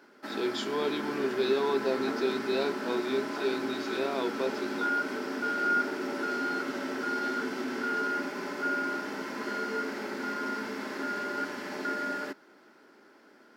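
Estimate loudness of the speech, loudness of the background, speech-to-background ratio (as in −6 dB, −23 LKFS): −32.0 LKFS, −33.0 LKFS, 1.0 dB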